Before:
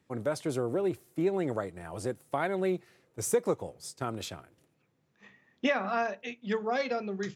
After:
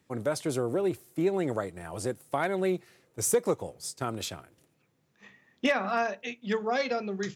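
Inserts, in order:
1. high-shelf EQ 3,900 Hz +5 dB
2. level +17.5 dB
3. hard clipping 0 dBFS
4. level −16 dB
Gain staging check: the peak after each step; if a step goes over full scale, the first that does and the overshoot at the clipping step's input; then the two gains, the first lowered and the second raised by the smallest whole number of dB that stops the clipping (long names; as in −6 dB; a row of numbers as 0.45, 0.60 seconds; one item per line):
−13.5, +4.0, 0.0, −16.0 dBFS
step 2, 4.0 dB
step 2 +13.5 dB, step 4 −12 dB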